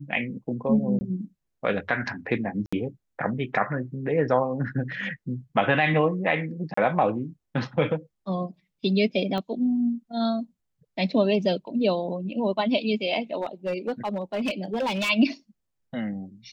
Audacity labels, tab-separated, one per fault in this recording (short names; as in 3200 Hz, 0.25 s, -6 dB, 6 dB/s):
0.990000	1.010000	gap 20 ms
2.660000	2.730000	gap 65 ms
6.740000	6.770000	gap 34 ms
9.380000	9.380000	pop -19 dBFS
13.410000	15.100000	clipped -22.5 dBFS